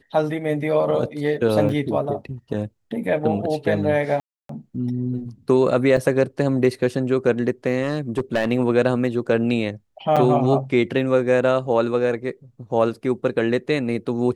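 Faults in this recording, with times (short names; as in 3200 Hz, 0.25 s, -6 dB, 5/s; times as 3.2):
1.69 gap 3.2 ms
4.2–4.49 gap 0.293 s
5.97 gap 2.2 ms
7.82–8.51 clipped -15.5 dBFS
10.16–10.17 gap 6.5 ms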